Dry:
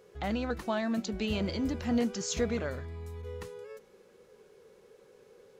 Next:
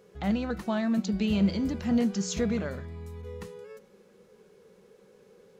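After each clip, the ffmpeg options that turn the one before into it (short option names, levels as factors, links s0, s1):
-af "equalizer=f=190:w=3.4:g=12,bandreject=f=184.8:t=h:w=4,bandreject=f=369.6:t=h:w=4,bandreject=f=554.4:t=h:w=4,bandreject=f=739.2:t=h:w=4,bandreject=f=924:t=h:w=4,bandreject=f=1108.8:t=h:w=4,bandreject=f=1293.6:t=h:w=4,bandreject=f=1478.4:t=h:w=4,bandreject=f=1663.2:t=h:w=4,bandreject=f=1848:t=h:w=4,bandreject=f=2032.8:t=h:w=4,bandreject=f=2217.6:t=h:w=4,bandreject=f=2402.4:t=h:w=4,bandreject=f=2587.2:t=h:w=4,bandreject=f=2772:t=h:w=4,bandreject=f=2956.8:t=h:w=4,bandreject=f=3141.6:t=h:w=4,bandreject=f=3326.4:t=h:w=4,bandreject=f=3511.2:t=h:w=4,bandreject=f=3696:t=h:w=4,bandreject=f=3880.8:t=h:w=4,bandreject=f=4065.6:t=h:w=4,bandreject=f=4250.4:t=h:w=4,bandreject=f=4435.2:t=h:w=4,bandreject=f=4620:t=h:w=4,bandreject=f=4804.8:t=h:w=4,bandreject=f=4989.6:t=h:w=4"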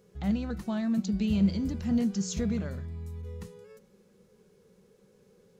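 -af "bass=f=250:g=10,treble=f=4000:g=6,volume=0.447"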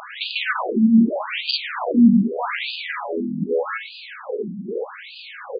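-filter_complex "[0:a]asplit=2[s0][s1];[s1]highpass=f=720:p=1,volume=158,asoftclip=type=tanh:threshold=0.188[s2];[s0][s2]amix=inputs=2:normalize=0,lowpass=f=5300:p=1,volume=0.501,asplit=2[s3][s4];[s4]adelay=105,lowpass=f=1300:p=1,volume=0.708,asplit=2[s5][s6];[s6]adelay=105,lowpass=f=1300:p=1,volume=0.42,asplit=2[s7][s8];[s8]adelay=105,lowpass=f=1300:p=1,volume=0.42,asplit=2[s9][s10];[s10]adelay=105,lowpass=f=1300:p=1,volume=0.42,asplit=2[s11][s12];[s12]adelay=105,lowpass=f=1300:p=1,volume=0.42[s13];[s3][s5][s7][s9][s11][s13]amix=inputs=6:normalize=0,afftfilt=real='re*between(b*sr/1024,210*pow(3500/210,0.5+0.5*sin(2*PI*0.82*pts/sr))/1.41,210*pow(3500/210,0.5+0.5*sin(2*PI*0.82*pts/sr))*1.41)':imag='im*between(b*sr/1024,210*pow(3500/210,0.5+0.5*sin(2*PI*0.82*pts/sr))/1.41,210*pow(3500/210,0.5+0.5*sin(2*PI*0.82*pts/sr))*1.41)':win_size=1024:overlap=0.75,volume=2.24"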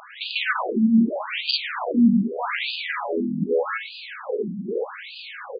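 -af "dynaudnorm=f=170:g=3:m=2.51,volume=0.422"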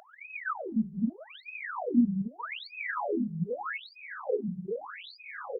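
-af "afftfilt=real='re*(1-between(b*sr/1024,250*pow(3700/250,0.5+0.5*sin(2*PI*0.81*pts/sr))/1.41,250*pow(3700/250,0.5+0.5*sin(2*PI*0.81*pts/sr))*1.41))':imag='im*(1-between(b*sr/1024,250*pow(3700/250,0.5+0.5*sin(2*PI*0.81*pts/sr))/1.41,250*pow(3700/250,0.5+0.5*sin(2*PI*0.81*pts/sr))*1.41))':win_size=1024:overlap=0.75,volume=0.794"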